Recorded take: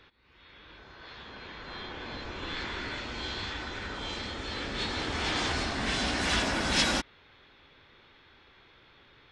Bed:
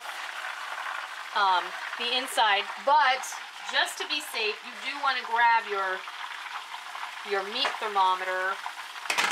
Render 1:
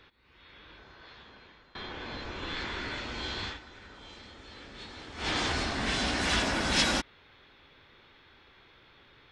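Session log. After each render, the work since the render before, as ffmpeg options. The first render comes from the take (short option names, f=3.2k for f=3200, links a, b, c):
-filter_complex "[0:a]asplit=4[a][b][c][d];[a]atrim=end=1.75,asetpts=PTS-STARTPTS,afade=t=out:st=0.6:d=1.15:silence=0.0841395[e];[b]atrim=start=1.75:end=3.6,asetpts=PTS-STARTPTS,afade=t=in:d=0.004:c=hsin:silence=0.0841395,afade=t=out:st=1.72:d=0.13:silence=0.237137[f];[c]atrim=start=3.6:end=5.16,asetpts=PTS-STARTPTS,volume=-12.5dB[g];[d]atrim=start=5.16,asetpts=PTS-STARTPTS,afade=t=in:d=0.13:silence=0.237137[h];[e][f][g][h]concat=n=4:v=0:a=1"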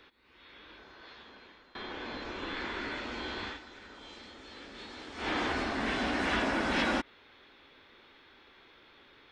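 -filter_complex "[0:a]acrossover=split=2800[a][b];[b]acompressor=threshold=-48dB:ratio=4:attack=1:release=60[c];[a][c]amix=inputs=2:normalize=0,lowshelf=f=190:t=q:w=1.5:g=-6.5"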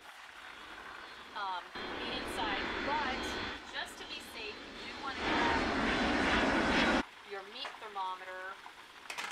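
-filter_complex "[1:a]volume=-15dB[a];[0:a][a]amix=inputs=2:normalize=0"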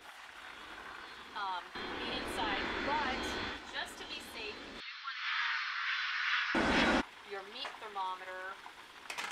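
-filter_complex "[0:a]asettb=1/sr,asplit=3[a][b][c];[a]atrim=end=0.944[d];[b]atrim=start=0.94:end=2.07,asetpts=PTS-STARTPTS,afade=t=in:d=0.004:c=qsin,afade=t=out:st=1.126:d=0.004:c=qsin,bandreject=f=600:w=6.1[e];[c]atrim=start=2.066[f];[d][e]acrossfade=d=0.004:c1=hsin:c2=qsin[g];[g][f]acrossfade=d=0.004:c1=qsin:c2=hsin,asettb=1/sr,asplit=3[h][i][j];[h]atrim=end=4.804[k];[i]atrim=start=4.8:end=6.55,asetpts=PTS-STARTPTS,afade=t=in:d=0.004:c=qsin,afade=t=out:st=1.746:d=0.004:c=qsin,asuperpass=centerf=2600:order=12:qfactor=0.58[l];[j]atrim=start=6.546[m];[k][l]acrossfade=d=0.004:c1=hsin:c2=qsin[n];[n][m]acrossfade=d=0.004:c1=qsin:c2=hsin"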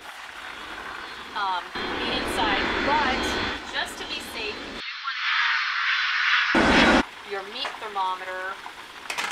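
-af "volume=12dB"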